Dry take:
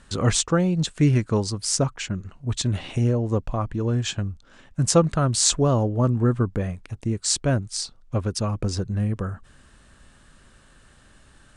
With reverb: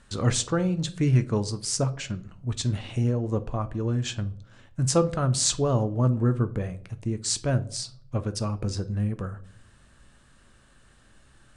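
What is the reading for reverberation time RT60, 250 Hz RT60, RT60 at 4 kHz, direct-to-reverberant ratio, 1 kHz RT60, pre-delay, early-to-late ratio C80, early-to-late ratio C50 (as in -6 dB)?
0.60 s, 0.70 s, 0.35 s, 10.5 dB, 0.50 s, 9 ms, 22.0 dB, 18.0 dB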